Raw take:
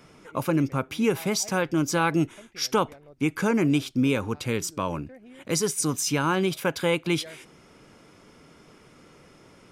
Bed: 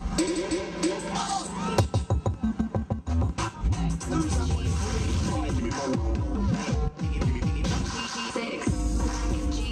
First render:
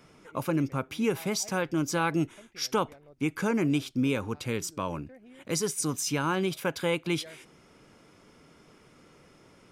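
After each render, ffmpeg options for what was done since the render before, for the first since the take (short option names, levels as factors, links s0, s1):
-af "volume=0.631"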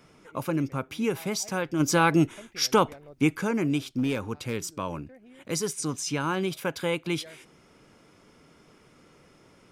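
-filter_complex "[0:a]asplit=3[s0][s1][s2];[s0]afade=t=out:st=1.79:d=0.02[s3];[s1]acontrast=60,afade=t=in:st=1.79:d=0.02,afade=t=out:st=3.35:d=0.02[s4];[s2]afade=t=in:st=3.35:d=0.02[s5];[s3][s4][s5]amix=inputs=3:normalize=0,asettb=1/sr,asplit=3[s6][s7][s8];[s6]atrim=end=3.944[s9];[s7]atrim=start=3.94:end=4.75,asetpts=PTS-STARTPTS,afade=t=in:d=0.004:c=qsin,afade=t=out:st=0.806:d=0.004:c=qsin,asoftclip=type=hard:threshold=0.1[s10];[s8]atrim=start=4.746[s11];[s9][s10]acrossfade=d=0.004:c1=hsin:c2=qsin[s12];[s12][s11]acrossfade=d=0.004:c1=qsin:c2=hsin,asettb=1/sr,asplit=3[s13][s14][s15];[s13]atrim=end=5.734[s16];[s14]atrim=start=5.73:end=6.2,asetpts=PTS-STARTPTS,afade=t=in:d=0.004:c=qsin,afade=t=out:st=0.466:d=0.004:c=qsin,lowpass=8600[s17];[s15]atrim=start=6.196[s18];[s16][s17]acrossfade=d=0.004:c1=hsin:c2=qsin[s19];[s19][s18]acrossfade=d=0.004:c1=qsin:c2=hsin"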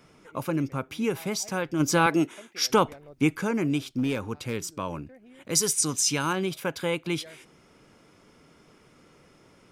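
-filter_complex "[0:a]asettb=1/sr,asplit=3[s0][s1][s2];[s0]atrim=end=2.064[s3];[s1]atrim=start=2.06:end=2.7,asetpts=PTS-STARTPTS,afade=t=in:d=0.004:c=qsin,afade=t=out:st=0.636:d=0.004:c=qsin,highpass=250[s4];[s2]atrim=start=2.696[s5];[s3][s4]acrossfade=d=0.004:c1=hsin:c2=qsin[s6];[s6][s5]acrossfade=d=0.004:c1=qsin:c2=hsin,asettb=1/sr,asplit=3[s7][s8][s9];[s7]atrim=end=5.554[s10];[s8]atrim=start=5.55:end=6.33,asetpts=PTS-STARTPTS,afade=t=in:d=0.004:c=qsin,afade=t=out:st=0.776:d=0.004:c=qsin,highshelf=f=3100:g=11[s11];[s9]atrim=start=6.326[s12];[s10][s11]acrossfade=d=0.004:c1=hsin:c2=qsin[s13];[s13][s12]acrossfade=d=0.004:c1=qsin:c2=hsin"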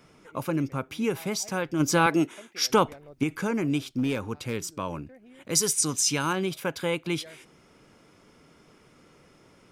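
-filter_complex "[0:a]asettb=1/sr,asplit=3[s0][s1][s2];[s0]atrim=end=3.234[s3];[s1]atrim=start=3.23:end=3.68,asetpts=PTS-STARTPTS,afade=t=in:d=0.004:c=qsin,afade=t=out:st=0.446:d=0.004:c=qsin,acompressor=threshold=0.0794:ratio=6:attack=3.2:release=140:knee=1:detection=peak[s4];[s2]atrim=start=3.676[s5];[s3][s4]acrossfade=d=0.004:c1=hsin:c2=qsin[s6];[s6][s5]acrossfade=d=0.004:c1=qsin:c2=hsin"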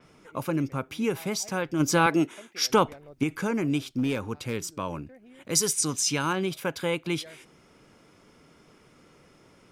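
-af "adynamicequalizer=threshold=0.0112:dfrequency=5800:dqfactor=0.7:tfrequency=5800:tqfactor=0.7:attack=5:release=100:ratio=0.375:range=2.5:mode=cutabove:tftype=highshelf"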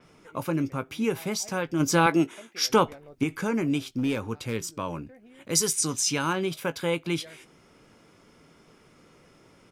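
-filter_complex "[0:a]asplit=2[s0][s1];[s1]adelay=18,volume=0.237[s2];[s0][s2]amix=inputs=2:normalize=0"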